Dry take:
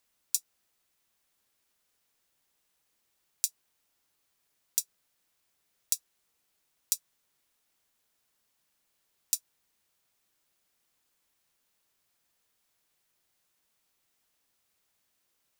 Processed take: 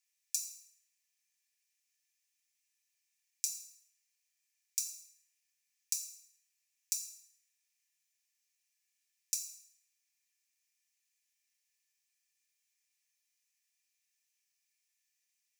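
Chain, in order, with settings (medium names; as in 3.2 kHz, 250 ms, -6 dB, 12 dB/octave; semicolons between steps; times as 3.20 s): rippled Chebyshev high-pass 1.7 kHz, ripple 9 dB; reverberation RT60 1.2 s, pre-delay 3 ms, DRR -1 dB; trim -3 dB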